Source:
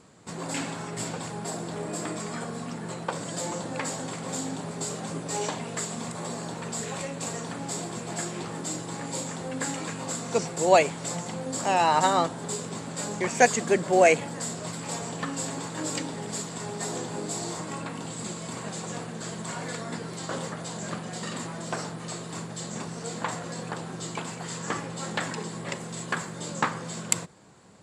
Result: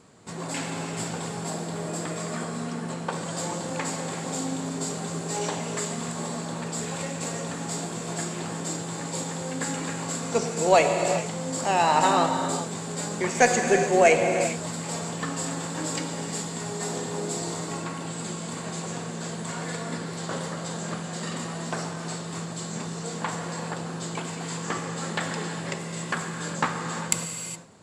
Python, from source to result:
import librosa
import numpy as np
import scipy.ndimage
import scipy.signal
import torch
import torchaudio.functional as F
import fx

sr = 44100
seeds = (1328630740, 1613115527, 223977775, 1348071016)

y = fx.rev_gated(x, sr, seeds[0], gate_ms=440, shape='flat', drr_db=3.5)
y = fx.cheby_harmonics(y, sr, harmonics=(2,), levels_db=(-21,), full_scale_db=-2.5)